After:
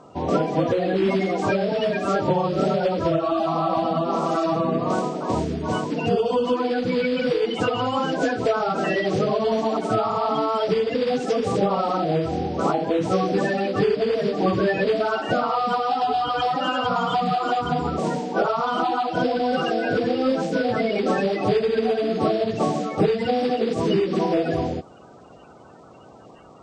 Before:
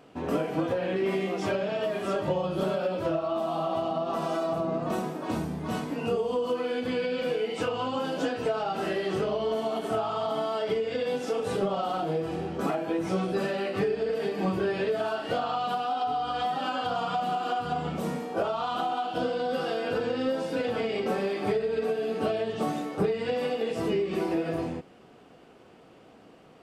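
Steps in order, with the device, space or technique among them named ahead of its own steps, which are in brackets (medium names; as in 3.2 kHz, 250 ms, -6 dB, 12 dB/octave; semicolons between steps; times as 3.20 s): clip after many re-uploads (low-pass 7.6 kHz 24 dB/octave; coarse spectral quantiser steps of 30 dB); trim +7.5 dB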